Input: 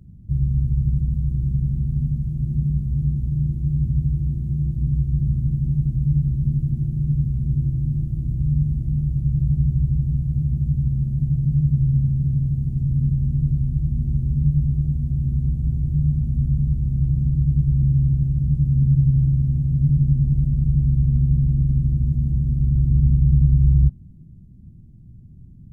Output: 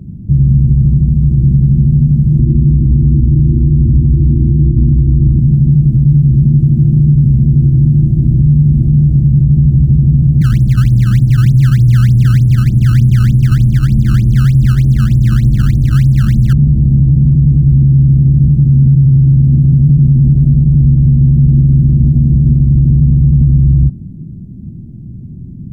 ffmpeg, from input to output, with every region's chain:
-filter_complex "[0:a]asettb=1/sr,asplit=3[s0][s1][s2];[s0]atrim=end=2.394[s3];[s1]atrim=start=2.39:end=5.39,asetpts=PTS-STARTPTS,afade=t=in:d=0.004:c=qsin,afade=t=out:st=2.996:d=0.004:c=qsin,lowpass=f=260:t=q:w=1.8,aecho=1:1:2.8:0.95,atrim=end_sample=132300[s4];[s2]atrim=start=5.386[s5];[s3][s4]acrossfade=d=0.004:c1=hsin:c2=qsin[s6];[s6][s5]acrossfade=d=0.004:c1=qsin:c2=hsin,asettb=1/sr,asplit=3[s7][s8][s9];[s7]atrim=end=10.414[s10];[s8]atrim=start=10.41:end=16.53,asetpts=PTS-STARTPTS,afade=t=in:d=0.004:c=qsin,afade=t=out:st=6.116:d=0.004:c=qsin,afreqshift=-14,acrusher=samples=18:mix=1:aa=0.000001:lfo=1:lforange=28.8:lforate=3.3[s11];[s9]atrim=start=16.526[s12];[s10][s11]acrossfade=d=0.004:c1=hsin:c2=qsin[s13];[s13][s12]acrossfade=d=0.004:c1=qsin:c2=hsin,equalizer=f=280:w=0.38:g=13,alimiter=level_in=2.82:limit=0.891:release=50:level=0:latency=1,volume=0.891"

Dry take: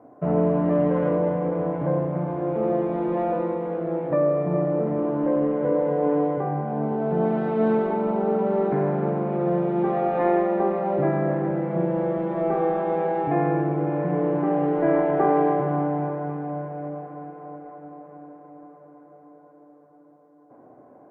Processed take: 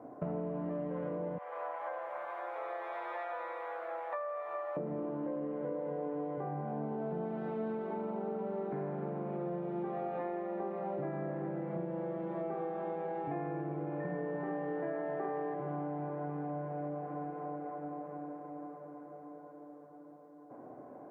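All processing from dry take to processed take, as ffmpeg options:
-filter_complex "[0:a]asettb=1/sr,asplit=3[s0][s1][s2];[s0]atrim=end=1.384[s3];[s1]atrim=start=1.38:end=4.77,asetpts=PTS-STARTPTS,afade=t=in:d=0.004:c=qsin,afade=t=out:st=3.386:d=0.004:c=qsin,highpass=f=850:w=0.5412,highpass=f=850:w=1.3066,asplit=2[s4][s5];[s5]adelay=12,volume=0.75[s6];[s4][s6]amix=inputs=2:normalize=0,atrim=end_sample=149499[s7];[s2]atrim=start=4.766[s8];[s3][s7]acrossfade=d=0.004:c1=hsin:c2=qsin[s9];[s9][s8]acrossfade=d=0.004:c1=qsin:c2=hsin,asettb=1/sr,asplit=3[s10][s11][s12];[s10]atrim=end=14.004[s13];[s11]atrim=start=14:end=15.54,asetpts=PTS-STARTPTS,afade=t=in:d=0.004:c=qsin,afade=t=out:st=1.536:d=0.004:c=qsin,asplit=2[s14][s15];[s15]adelay=50,volume=0.531[s16];[s14][s16]amix=inputs=2:normalize=0,atrim=end_sample=67914,aeval=exprs='val(0)+0.0158*sin(2*PI*1800*n/s)':c=same[s17];[s12]atrim=start=15.536[s18];[s13][s17]acrossfade=d=0.004:c1=hsin:c2=qsin[s19];[s19][s18]acrossfade=d=0.004:c1=qsin:c2=hsin,highpass=82,acompressor=threshold=0.0158:ratio=6"

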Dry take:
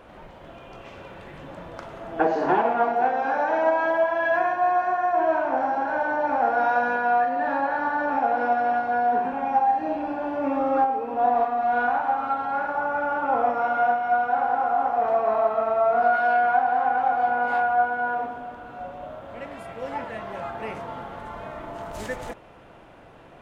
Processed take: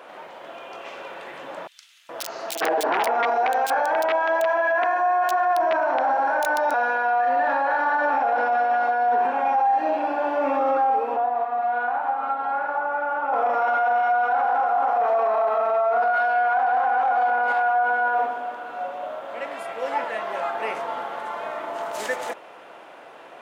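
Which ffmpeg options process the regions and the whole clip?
-filter_complex "[0:a]asettb=1/sr,asplit=3[s0][s1][s2];[s0]atrim=end=1.674[s3];[s1]atrim=start=1.67:end=6.74,asetpts=PTS-STARTPTS,afade=t=in:d=0.004:c=qsin,afade=t=out:st=5.066:d=0.004:c=qsin,highpass=f=49:p=1,aeval=exprs='(mod(4.22*val(0)+1,2)-1)/4.22':c=same,acrossover=split=3000[s4][s5];[s4]adelay=420[s6];[s6][s5]amix=inputs=2:normalize=0,atrim=end_sample=223587[s7];[s2]atrim=start=6.736[s8];[s3][s7]acrossfade=d=0.004:c1=hsin:c2=qsin[s9];[s9][s8]acrossfade=d=0.004:c1=qsin:c2=hsin,asettb=1/sr,asplit=3[s10][s11][s12];[s10]atrim=end=11.164[s13];[s11]atrim=start=11.16:end=13.33,asetpts=PTS-STARTPTS,afade=t=in:d=0.004:c=qsin,afade=t=out:st=2.166:d=0.004:c=qsin,acrossover=split=220|540[s14][s15][s16];[s14]acompressor=threshold=0.00355:ratio=4[s17];[s15]acompressor=threshold=0.00794:ratio=4[s18];[s16]acompressor=threshold=0.0316:ratio=4[s19];[s17][s18][s19]amix=inputs=3:normalize=0,aeval=exprs='val(0)+0.002*(sin(2*PI*60*n/s)+sin(2*PI*2*60*n/s)/2+sin(2*PI*3*60*n/s)/3+sin(2*PI*4*60*n/s)/4+sin(2*PI*5*60*n/s)/5)':c=same,lowpass=f=2400:p=1[s20];[s12]atrim=start=13.326[s21];[s13][s20]acrossfade=d=0.004:c1=hsin:c2=qsin[s22];[s22][s21]acrossfade=d=0.004:c1=qsin:c2=hsin,highpass=480,alimiter=limit=0.0841:level=0:latency=1:release=13,volume=2.24"

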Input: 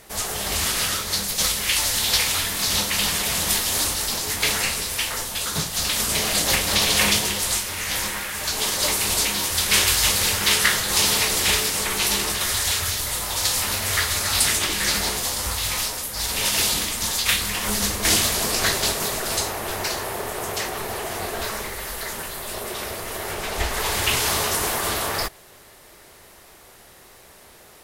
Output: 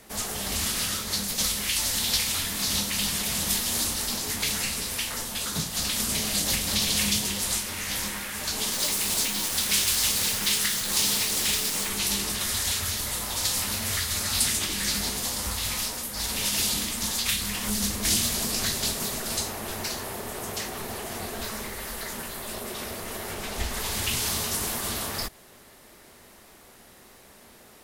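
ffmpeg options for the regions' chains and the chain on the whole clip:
-filter_complex "[0:a]asettb=1/sr,asplit=3[s0][s1][s2];[s0]atrim=end=8.734[s3];[s1]atrim=start=8.73:end=11.89,asetpts=PTS-STARTPTS,afade=t=in:d=0.004:c=qsin,afade=t=out:st=3.156:d=0.004:c=qsin,lowshelf=f=120:g=-9,acrusher=bits=5:dc=4:mix=0:aa=0.000001[s4];[s2]atrim=start=11.886[s5];[s3][s4]acrossfade=d=0.004:c1=hsin:c2=qsin[s6];[s6][s5]acrossfade=d=0.004:c1=qsin:c2=hsin,equalizer=f=230:t=o:w=0.62:g=8.5,acrossover=split=190|3000[s7][s8][s9];[s8]acompressor=threshold=0.0316:ratio=6[s10];[s7][s10][s9]amix=inputs=3:normalize=0,volume=0.631"

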